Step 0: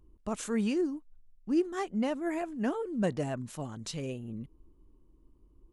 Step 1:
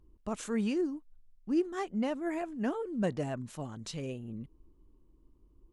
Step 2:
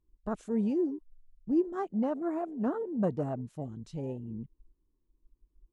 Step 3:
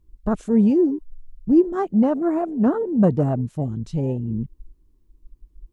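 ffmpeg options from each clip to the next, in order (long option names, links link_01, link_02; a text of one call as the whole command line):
ffmpeg -i in.wav -af "highshelf=frequency=9300:gain=-6,volume=-1.5dB" out.wav
ffmpeg -i in.wav -af "afwtdn=0.0158,volume=2dB" out.wav
ffmpeg -i in.wav -af "lowshelf=frequency=210:gain=9,volume=9dB" out.wav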